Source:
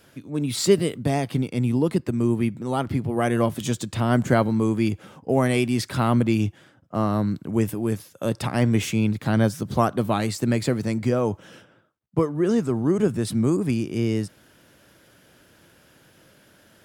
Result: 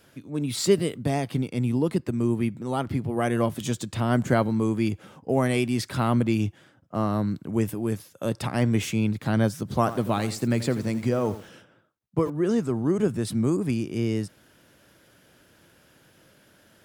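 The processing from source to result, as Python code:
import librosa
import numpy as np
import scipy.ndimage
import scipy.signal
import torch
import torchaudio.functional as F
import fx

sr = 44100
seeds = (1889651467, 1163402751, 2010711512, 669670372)

y = fx.echo_crushed(x, sr, ms=85, feedback_pct=35, bits=6, wet_db=-13, at=(9.77, 12.3))
y = y * 10.0 ** (-2.5 / 20.0)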